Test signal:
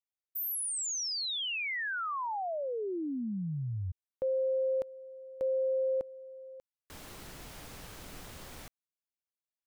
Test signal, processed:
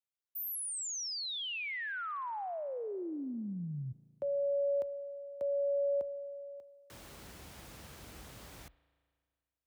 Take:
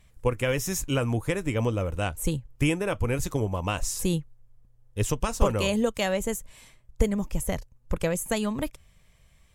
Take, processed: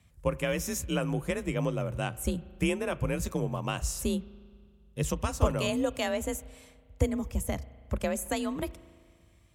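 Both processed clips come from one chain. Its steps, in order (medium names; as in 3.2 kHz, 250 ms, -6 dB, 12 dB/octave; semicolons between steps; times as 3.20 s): spring tank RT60 2 s, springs 36 ms, chirp 30 ms, DRR 18.5 dB; frequency shift +38 Hz; trim -4 dB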